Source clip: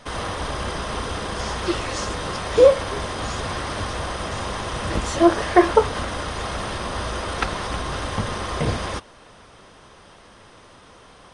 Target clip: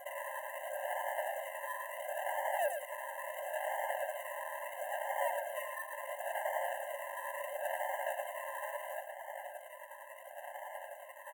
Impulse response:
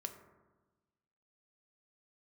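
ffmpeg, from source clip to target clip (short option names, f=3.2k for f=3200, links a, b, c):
-filter_complex "[0:a]acrusher=samples=40:mix=1:aa=0.000001:lfo=1:lforange=24:lforate=0.73,acompressor=threshold=-37dB:ratio=2.5,tremolo=f=11:d=0.52,asetrate=37084,aresample=44100,atempo=1.18921,asoftclip=type=tanh:threshold=-37.5dB,asuperstop=centerf=4700:order=4:qfactor=0.68,asplit=2[a][b];[b]aecho=0:1:110:0.447[c];[a][c]amix=inputs=2:normalize=0,afftfilt=real='re*eq(mod(floor(b*sr/1024/530),2),1)':imag='im*eq(mod(floor(b*sr/1024/530),2),1)':win_size=1024:overlap=0.75,volume=12.5dB"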